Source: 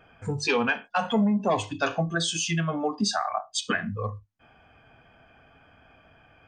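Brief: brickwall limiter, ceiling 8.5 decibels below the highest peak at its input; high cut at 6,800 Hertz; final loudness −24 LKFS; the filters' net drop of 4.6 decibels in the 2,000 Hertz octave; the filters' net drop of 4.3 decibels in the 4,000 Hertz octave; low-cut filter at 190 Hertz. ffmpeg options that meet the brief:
ffmpeg -i in.wav -af "highpass=190,lowpass=6800,equalizer=frequency=2000:width_type=o:gain=-6,equalizer=frequency=4000:width_type=o:gain=-3,volume=8.5dB,alimiter=limit=-14dB:level=0:latency=1" out.wav

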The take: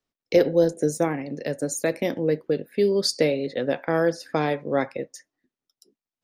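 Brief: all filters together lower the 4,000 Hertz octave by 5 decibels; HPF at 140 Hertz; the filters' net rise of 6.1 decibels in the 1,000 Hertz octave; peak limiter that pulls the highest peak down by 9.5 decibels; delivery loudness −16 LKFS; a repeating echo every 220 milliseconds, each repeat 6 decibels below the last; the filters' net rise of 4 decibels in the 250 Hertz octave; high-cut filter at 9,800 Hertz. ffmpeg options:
ffmpeg -i in.wav -af "highpass=140,lowpass=9800,equalizer=frequency=250:width_type=o:gain=5.5,equalizer=frequency=1000:width_type=o:gain=8.5,equalizer=frequency=4000:width_type=o:gain=-6.5,alimiter=limit=-13dB:level=0:latency=1,aecho=1:1:220|440|660|880|1100|1320:0.501|0.251|0.125|0.0626|0.0313|0.0157,volume=7.5dB" out.wav

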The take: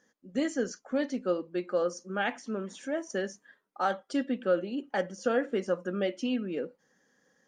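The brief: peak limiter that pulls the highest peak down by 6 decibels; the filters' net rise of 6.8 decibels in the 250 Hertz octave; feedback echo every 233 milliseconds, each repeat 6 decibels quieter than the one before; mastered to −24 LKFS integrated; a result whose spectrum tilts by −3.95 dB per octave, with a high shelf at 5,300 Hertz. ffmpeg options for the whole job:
ffmpeg -i in.wav -af "equalizer=frequency=250:width_type=o:gain=8,highshelf=frequency=5300:gain=-8.5,alimiter=limit=-18.5dB:level=0:latency=1,aecho=1:1:233|466|699|932|1165|1398:0.501|0.251|0.125|0.0626|0.0313|0.0157,volume=5dB" out.wav

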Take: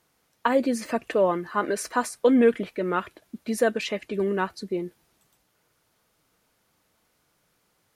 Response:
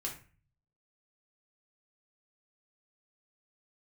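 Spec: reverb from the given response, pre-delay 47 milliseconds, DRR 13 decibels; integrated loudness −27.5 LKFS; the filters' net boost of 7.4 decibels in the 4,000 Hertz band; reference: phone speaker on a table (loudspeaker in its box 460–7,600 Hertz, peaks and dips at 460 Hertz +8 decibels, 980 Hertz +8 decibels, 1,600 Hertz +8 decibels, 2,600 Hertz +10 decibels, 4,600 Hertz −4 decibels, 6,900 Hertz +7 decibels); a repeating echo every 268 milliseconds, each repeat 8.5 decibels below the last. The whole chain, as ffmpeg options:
-filter_complex "[0:a]equalizer=frequency=4000:width_type=o:gain=6.5,aecho=1:1:268|536|804|1072:0.376|0.143|0.0543|0.0206,asplit=2[link_01][link_02];[1:a]atrim=start_sample=2205,adelay=47[link_03];[link_02][link_03]afir=irnorm=-1:irlink=0,volume=-13.5dB[link_04];[link_01][link_04]amix=inputs=2:normalize=0,highpass=frequency=460:width=0.5412,highpass=frequency=460:width=1.3066,equalizer=frequency=460:width_type=q:width=4:gain=8,equalizer=frequency=980:width_type=q:width=4:gain=8,equalizer=frequency=1600:width_type=q:width=4:gain=8,equalizer=frequency=2600:width_type=q:width=4:gain=10,equalizer=frequency=4600:width_type=q:width=4:gain=-4,equalizer=frequency=6900:width_type=q:width=4:gain=7,lowpass=frequency=7600:width=0.5412,lowpass=frequency=7600:width=1.3066,volume=-6.5dB"

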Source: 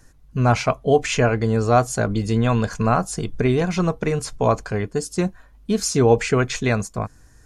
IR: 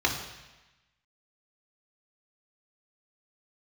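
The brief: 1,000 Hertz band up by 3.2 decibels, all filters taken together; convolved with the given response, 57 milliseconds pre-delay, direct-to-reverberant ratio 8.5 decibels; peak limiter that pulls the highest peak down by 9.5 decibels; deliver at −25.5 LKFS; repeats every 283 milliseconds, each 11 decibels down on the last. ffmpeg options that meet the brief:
-filter_complex "[0:a]equalizer=frequency=1000:width_type=o:gain=4.5,alimiter=limit=-11.5dB:level=0:latency=1,aecho=1:1:283|566|849:0.282|0.0789|0.0221,asplit=2[link_01][link_02];[1:a]atrim=start_sample=2205,adelay=57[link_03];[link_02][link_03]afir=irnorm=-1:irlink=0,volume=-21dB[link_04];[link_01][link_04]amix=inputs=2:normalize=0,volume=-3dB"

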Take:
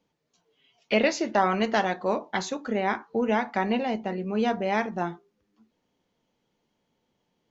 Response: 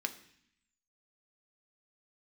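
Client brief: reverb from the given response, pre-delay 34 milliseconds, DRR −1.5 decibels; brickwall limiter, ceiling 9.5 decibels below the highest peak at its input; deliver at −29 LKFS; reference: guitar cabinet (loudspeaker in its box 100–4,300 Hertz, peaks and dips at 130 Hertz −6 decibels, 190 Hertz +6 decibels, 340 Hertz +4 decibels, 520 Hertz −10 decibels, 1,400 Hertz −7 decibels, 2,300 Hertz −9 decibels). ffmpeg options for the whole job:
-filter_complex "[0:a]alimiter=limit=-18dB:level=0:latency=1,asplit=2[link_01][link_02];[1:a]atrim=start_sample=2205,adelay=34[link_03];[link_02][link_03]afir=irnorm=-1:irlink=0,volume=-0.5dB[link_04];[link_01][link_04]amix=inputs=2:normalize=0,highpass=100,equalizer=frequency=130:width_type=q:width=4:gain=-6,equalizer=frequency=190:width_type=q:width=4:gain=6,equalizer=frequency=340:width_type=q:width=4:gain=4,equalizer=frequency=520:width_type=q:width=4:gain=-10,equalizer=frequency=1400:width_type=q:width=4:gain=-7,equalizer=frequency=2300:width_type=q:width=4:gain=-9,lowpass=frequency=4300:width=0.5412,lowpass=frequency=4300:width=1.3066,volume=-2.5dB"

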